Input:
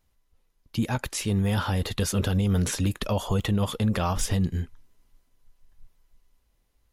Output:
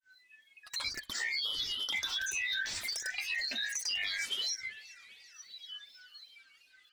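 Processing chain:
band-splitting scrambler in four parts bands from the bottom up 2413
high-shelf EQ 2,800 Hz +7.5 dB
downward compressor 3 to 1, threshold −36 dBFS, peak gain reduction 15 dB
granular cloud 205 ms, grains 14 per second, pitch spread up and down by 12 semitones
flanger 1.3 Hz, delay 2.1 ms, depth 1.5 ms, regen −43%
feedback echo with a swinging delay time 391 ms, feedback 68%, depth 156 cents, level −22 dB
level +5 dB

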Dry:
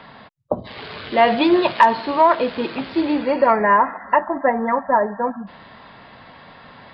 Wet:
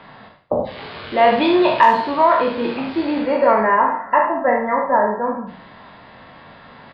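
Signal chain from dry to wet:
peak hold with a decay on every bin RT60 0.51 s
high-shelf EQ 4,400 Hz −6.5 dB
on a send: ambience of single reflections 42 ms −7.5 dB, 75 ms −8 dB
on the sum: level −1.5 dB

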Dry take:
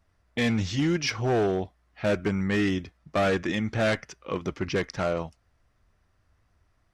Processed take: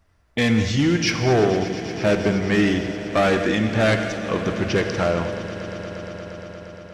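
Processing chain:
echo that builds up and dies away 117 ms, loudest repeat 5, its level −17.5 dB
reverb whose tail is shaped and stops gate 260 ms flat, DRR 7 dB
level +5.5 dB

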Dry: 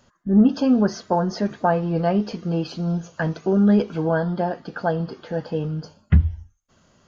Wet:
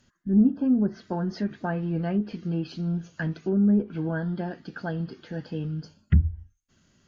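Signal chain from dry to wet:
flat-topped bell 750 Hz −9 dB
treble cut that deepens with the level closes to 840 Hz, closed at −15.5 dBFS
level −4 dB

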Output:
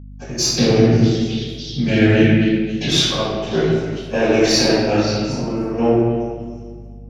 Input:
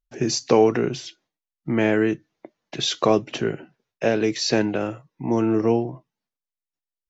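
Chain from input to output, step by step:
one-sided soft clipper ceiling −16 dBFS
0:00.49–0:02.77: octave-band graphic EQ 125/250/1,000/2,000/4,000 Hz +11/+7/−12/+4/+10 dB
echo through a band-pass that steps 268 ms, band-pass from 2,600 Hz, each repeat 0.7 octaves, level −7 dB
gate pattern "x.xxx...x.x.xxx" 100 BPM −12 dB
brickwall limiter −12.5 dBFS, peak gain reduction 11 dB
convolution reverb RT60 1.7 s, pre-delay 78 ms
mains hum 50 Hz, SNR 19 dB
level +1 dB

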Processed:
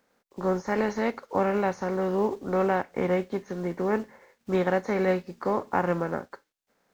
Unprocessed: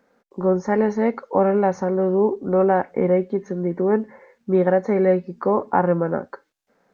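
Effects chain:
compressing power law on the bin magnitudes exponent 0.66
level −7 dB

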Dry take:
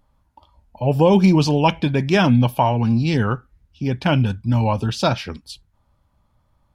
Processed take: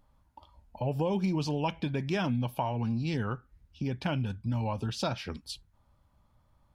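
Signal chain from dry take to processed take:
downward compressor 2.5 to 1, threshold −29 dBFS, peak gain reduction 12.5 dB
level −3.5 dB

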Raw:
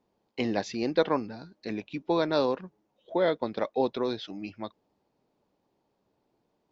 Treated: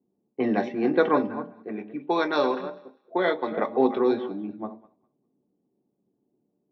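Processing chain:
delay that plays each chunk backwards 180 ms, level −12 dB
low-pass that shuts in the quiet parts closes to 310 Hz, open at −21.5 dBFS
0:01.44–0:03.52: spectral tilt +2.5 dB per octave
feedback echo with a high-pass in the loop 200 ms, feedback 22%, high-pass 780 Hz, level −19.5 dB
convolution reverb RT60 0.45 s, pre-delay 3 ms, DRR 4.5 dB
level −6 dB

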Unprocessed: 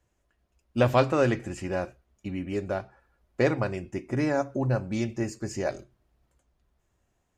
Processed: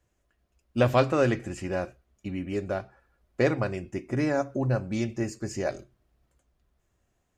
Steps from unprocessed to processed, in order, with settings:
parametric band 900 Hz −4 dB 0.23 octaves

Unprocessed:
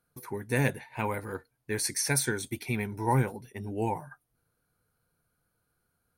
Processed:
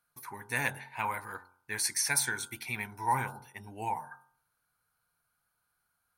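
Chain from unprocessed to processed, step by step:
low shelf with overshoot 640 Hz −10.5 dB, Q 1.5
hum removal 45.29 Hz, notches 35

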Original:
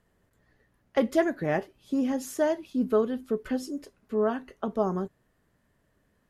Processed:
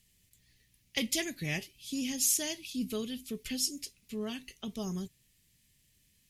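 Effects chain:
drawn EQ curve 140 Hz 0 dB, 590 Hz −17 dB, 1,500 Hz −15 dB, 2,300 Hz +9 dB, 5,800 Hz +15 dB
level −1 dB

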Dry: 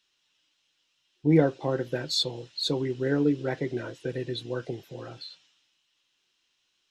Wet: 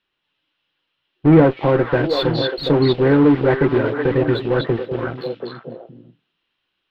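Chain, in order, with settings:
in parallel at −7.5 dB: fuzz pedal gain 32 dB, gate −41 dBFS
on the sum: high-frequency loss of the air 460 metres
echo through a band-pass that steps 244 ms, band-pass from 3,700 Hz, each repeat −1.4 octaves, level 0 dB
level +6 dB

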